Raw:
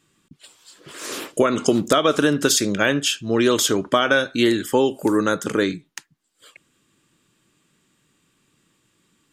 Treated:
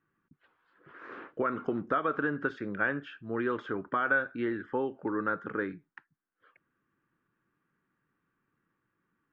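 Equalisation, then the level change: four-pole ladder low-pass 1.8 kHz, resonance 50%; band-stop 610 Hz, Q 12; -4.5 dB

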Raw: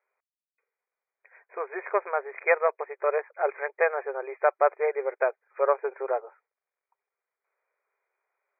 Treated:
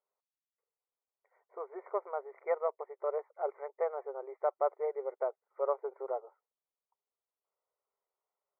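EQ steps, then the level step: Savitzky-Golay filter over 65 samples; -8.0 dB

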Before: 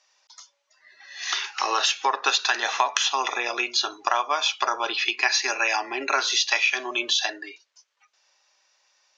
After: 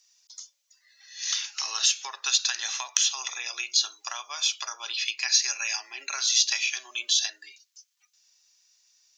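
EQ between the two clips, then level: differentiator; treble shelf 4.6 kHz +10 dB; 0.0 dB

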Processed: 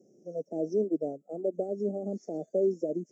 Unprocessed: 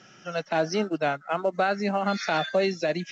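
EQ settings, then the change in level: high-pass 380 Hz 12 dB/octave; inverse Chebyshev band-stop 980–4100 Hz, stop band 50 dB; treble shelf 2.4 kHz -9 dB; +5.0 dB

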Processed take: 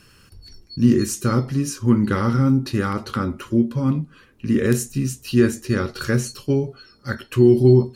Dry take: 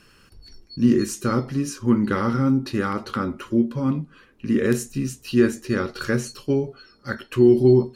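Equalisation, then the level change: peaking EQ 98 Hz +8 dB 1.3 oct; treble shelf 5.1 kHz +6.5 dB; 0.0 dB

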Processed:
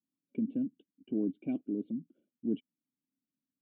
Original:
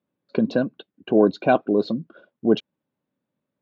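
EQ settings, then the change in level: cascade formant filter i; distance through air 240 m; peaking EQ 1.2 kHz -4.5 dB 0.86 oct; -6.0 dB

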